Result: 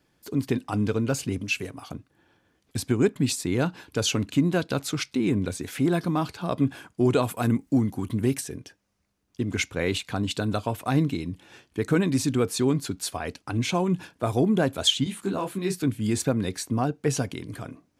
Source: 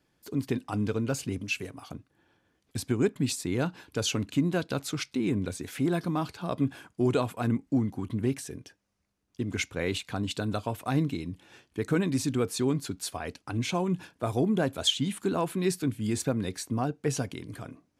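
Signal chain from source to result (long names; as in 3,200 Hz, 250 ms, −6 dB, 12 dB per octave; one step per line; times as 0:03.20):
0:07.23–0:08.41: high-shelf EQ 7,400 Hz +11.5 dB
0:15.04–0:15.75: micro pitch shift up and down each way 32 cents
level +4 dB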